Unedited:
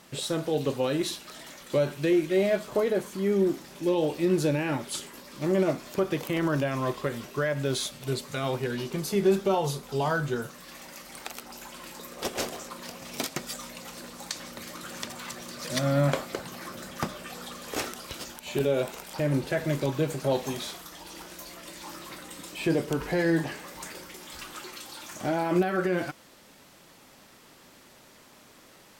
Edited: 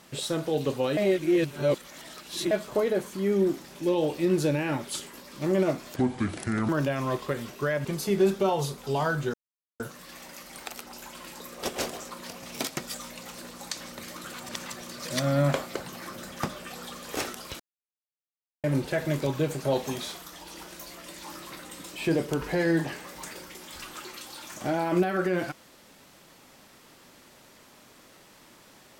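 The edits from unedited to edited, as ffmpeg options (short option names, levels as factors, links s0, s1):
-filter_complex "[0:a]asplit=11[s0][s1][s2][s3][s4][s5][s6][s7][s8][s9][s10];[s0]atrim=end=0.972[s11];[s1]atrim=start=0.968:end=2.512,asetpts=PTS-STARTPTS,areverse[s12];[s2]atrim=start=2.508:end=5.964[s13];[s3]atrim=start=5.96:end=6.44,asetpts=PTS-STARTPTS,asetrate=29106,aresample=44100[s14];[s4]atrim=start=6.436:end=7.602[s15];[s5]atrim=start=8.898:end=10.39,asetpts=PTS-STARTPTS,afade=t=out:st=1.488:d=0.004:c=hsin,apad=pad_dur=0.46[s16];[s6]atrim=start=10.39:end=14.932,asetpts=PTS-STARTPTS,afade=t=in:d=0.004:c=hsin[s17];[s7]atrim=start=14.928:end=15.252,asetpts=PTS-STARTPTS,areverse[s18];[s8]atrim=start=15.248:end=18.19,asetpts=PTS-STARTPTS,afade=t=out:st=2.938:d=0.004:c=hsin[s19];[s9]atrim=start=18.19:end=19.23,asetpts=PTS-STARTPTS,volume=0[s20];[s10]atrim=start=19.23,asetpts=PTS-STARTPTS,afade=t=in:d=0.004:c=hsin[s21];[s11][s12]acrossfade=d=0.004:c1=hsin:c2=hsin[s22];[s22][s13]acrossfade=d=0.004:c1=hsin:c2=hsin[s23];[s23][s14]acrossfade=d=0.004:c1=hsin:c2=hsin[s24];[s24][s15]acrossfade=d=0.004:c1=hsin:c2=hsin[s25];[s16][s17]concat=n=2:v=0:a=1[s26];[s25][s26]acrossfade=d=0.004:c1=hsin:c2=hsin[s27];[s27][s18]acrossfade=d=0.004:c1=hsin:c2=hsin[s28];[s19][s20][s21]concat=n=3:v=0:a=1[s29];[s28][s29]acrossfade=d=0.004:c1=hsin:c2=hsin"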